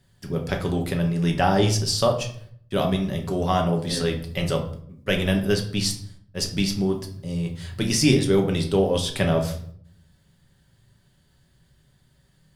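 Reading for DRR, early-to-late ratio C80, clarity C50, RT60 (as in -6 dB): 2.5 dB, 13.5 dB, 9.5 dB, 0.60 s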